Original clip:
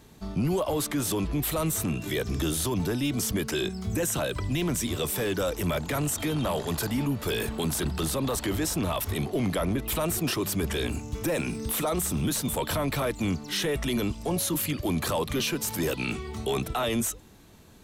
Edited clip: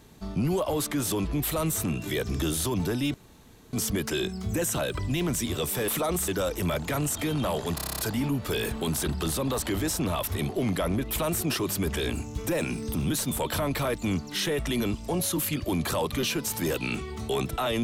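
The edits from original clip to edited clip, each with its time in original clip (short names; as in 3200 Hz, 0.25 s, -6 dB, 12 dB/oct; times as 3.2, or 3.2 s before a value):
3.14 insert room tone 0.59 s
6.76 stutter 0.03 s, 9 plays
11.71–12.11 move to 5.29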